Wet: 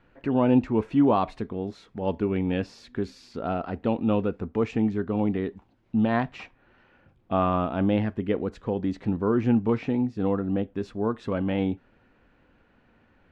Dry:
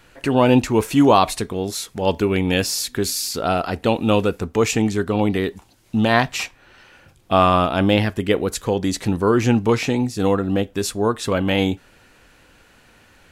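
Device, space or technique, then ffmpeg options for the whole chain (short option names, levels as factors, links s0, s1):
phone in a pocket: -filter_complex "[0:a]lowpass=3200,equalizer=f=230:t=o:w=0.7:g=5,highshelf=f=2300:g=-11,asettb=1/sr,asplit=3[s0][s1][s2];[s0]atrim=end=11.044[s3];[s1]atrim=start=11.04:end=11.44,asetpts=PTS-STARTPTS,afade=t=in:d=0.004:c=qsin,afade=t=out:st=0.396:d=0.004:c=qsin,highshelf=f=5200:g=6[s4];[s2]atrim=start=11.436[s5];[s3][s4]acrossfade=d=0.004:c1=hsin:c2=qsin[s6];[s6][s5]acrossfade=d=0.004:c1=qsin:c2=hsin,volume=0.398"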